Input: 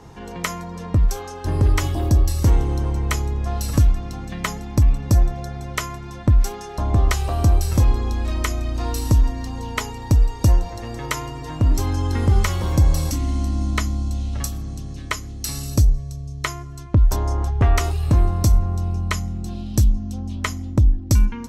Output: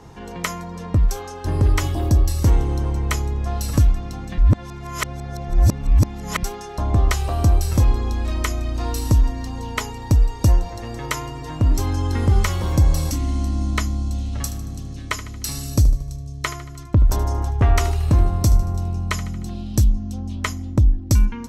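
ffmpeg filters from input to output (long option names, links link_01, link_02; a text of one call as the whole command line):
ffmpeg -i in.wav -filter_complex "[0:a]asettb=1/sr,asplit=3[link_01][link_02][link_03];[link_01]atrim=end=14.054[link_04];[link_02]atrim=start=14.05:end=19.51,asetpts=PTS-STARTPTS,afade=type=in:duration=0.004:curve=qsin,afade=type=out:start_time=5.456:duration=0.004:curve=qsin,aecho=1:1:76|152|228|304|380:0.2|0.106|0.056|0.0297|0.0157,atrim=end_sample=240786[link_05];[link_03]atrim=start=19.506[link_06];[link_04][link_05]acrossfade=duration=0.004:curve1=hsin:curve2=qsin[link_07];[link_07][link_06]acrossfade=duration=0.004:curve1=qsin:curve2=hsin,asplit=3[link_08][link_09][link_10];[link_08]atrim=end=4.382[link_11];[link_09]atrim=start=4.378:end=6.432,asetpts=PTS-STARTPTS,areverse[link_12];[link_10]atrim=start=6.428[link_13];[link_11][link_12]acrossfade=duration=0.004:curve1=hsin:curve2=hsin[link_14];[link_14][link_13]acrossfade=duration=0.004:curve1=hsin:curve2=hsin" out.wav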